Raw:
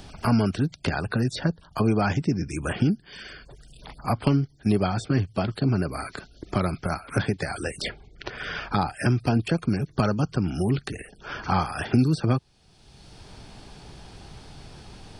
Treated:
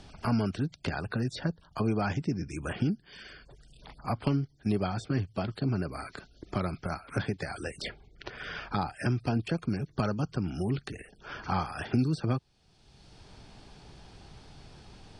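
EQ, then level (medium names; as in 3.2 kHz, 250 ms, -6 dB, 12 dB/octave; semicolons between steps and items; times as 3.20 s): low-pass 8.4 kHz 12 dB/octave; -6.5 dB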